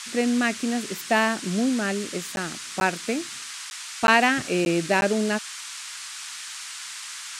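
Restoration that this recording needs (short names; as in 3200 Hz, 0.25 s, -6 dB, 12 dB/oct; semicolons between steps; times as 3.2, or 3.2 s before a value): interpolate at 2.36/2.8/3.7/4.07/4.65/5.01, 11 ms; noise print and reduce 30 dB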